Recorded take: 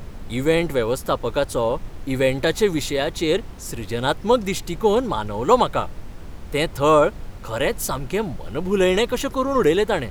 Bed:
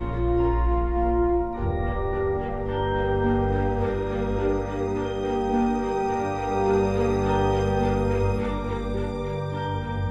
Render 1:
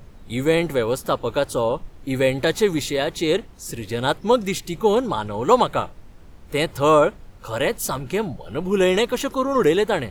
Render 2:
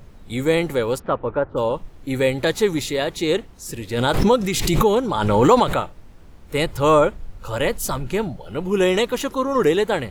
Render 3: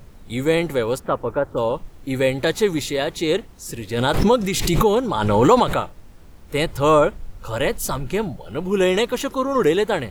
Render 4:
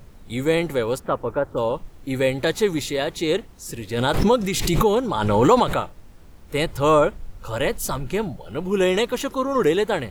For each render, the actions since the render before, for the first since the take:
noise reduction from a noise print 9 dB
0:00.98–0:01.56: low-pass filter 2,800 Hz → 1,500 Hz 24 dB per octave; 0:03.93–0:05.83: background raised ahead of every attack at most 31 dB per second; 0:06.55–0:08.29: low-shelf EQ 75 Hz +11 dB
bit reduction 10 bits
level −1.5 dB

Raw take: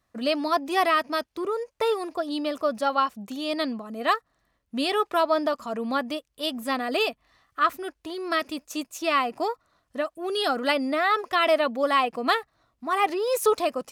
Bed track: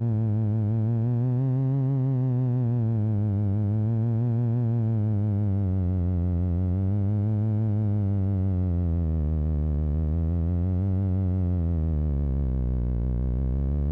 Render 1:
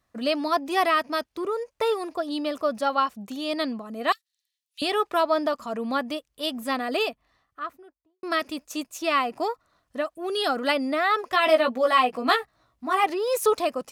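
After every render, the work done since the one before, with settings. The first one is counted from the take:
0:04.12–0:04.82: inverse Chebyshev high-pass filter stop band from 520 Hz, stop band 80 dB
0:06.81–0:08.23: fade out and dull
0:11.30–0:13.04: double-tracking delay 16 ms −4 dB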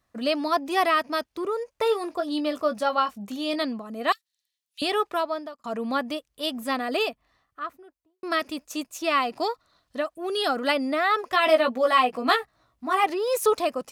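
0:01.84–0:03.63: double-tracking delay 20 ms −9.5 dB
0:04.97–0:05.64: fade out
0:09.22–0:10.00: parametric band 4,100 Hz +9 dB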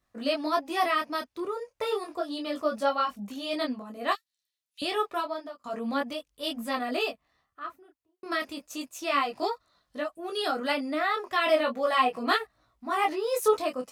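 micro pitch shift up and down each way 11 cents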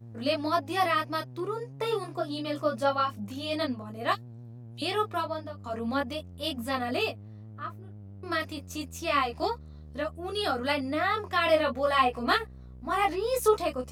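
mix in bed track −21 dB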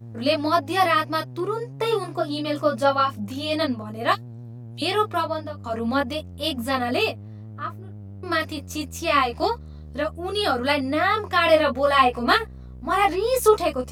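level +6.5 dB

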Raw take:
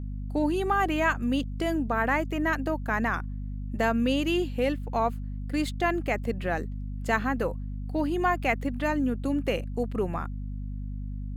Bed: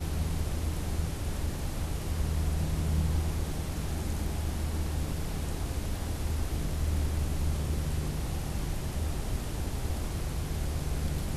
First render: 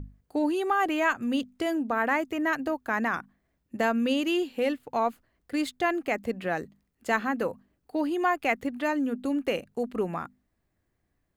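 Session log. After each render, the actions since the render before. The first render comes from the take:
mains-hum notches 50/100/150/200/250 Hz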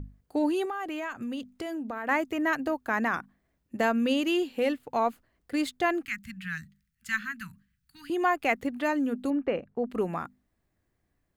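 0:00.65–0:02.09: downward compressor 4 to 1, threshold −32 dBFS
0:06.05–0:08.10: Chebyshev band-stop filter 180–1,500 Hz, order 3
0:09.30–0:09.90: low-pass filter 1,800 Hz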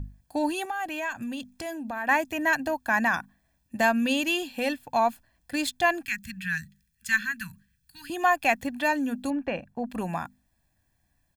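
high-shelf EQ 2,700 Hz +8 dB
comb filter 1.2 ms, depth 71%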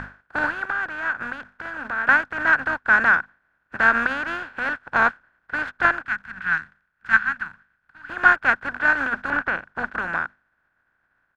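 compressing power law on the bin magnitudes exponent 0.29
low-pass with resonance 1,500 Hz, resonance Q 10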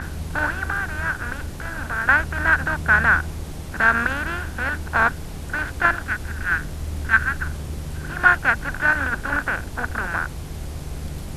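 mix in bed +0.5 dB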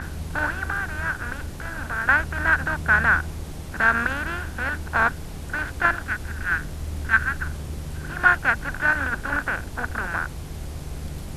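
level −2 dB

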